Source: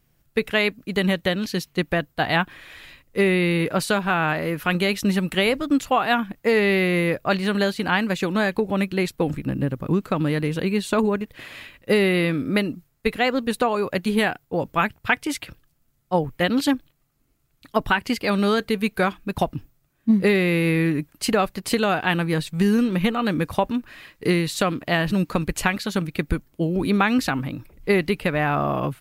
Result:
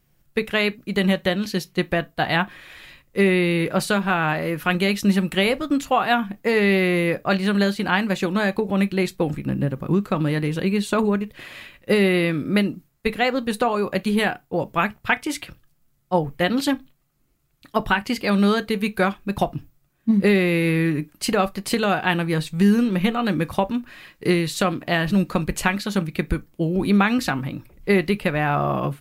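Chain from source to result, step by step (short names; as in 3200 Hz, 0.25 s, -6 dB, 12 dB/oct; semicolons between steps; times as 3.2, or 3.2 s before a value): on a send: reverb, pre-delay 6 ms, DRR 12.5 dB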